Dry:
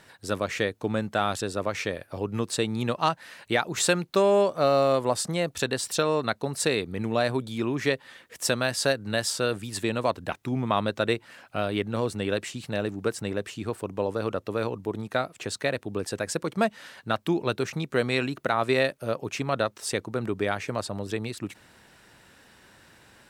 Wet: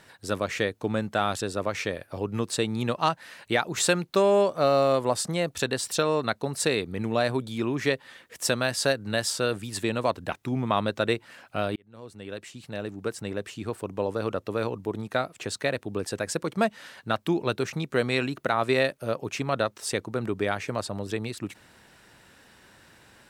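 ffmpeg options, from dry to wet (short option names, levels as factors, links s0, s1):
-filter_complex "[0:a]asplit=2[s0][s1];[s0]atrim=end=11.76,asetpts=PTS-STARTPTS,afade=t=out:st=11.756:d=0.004:c=hsin[s2];[s1]atrim=start=11.76,asetpts=PTS-STARTPTS,afade=t=in:d=2.82:c=qsin[s3];[s2][s3]concat=n=2:v=0:a=1"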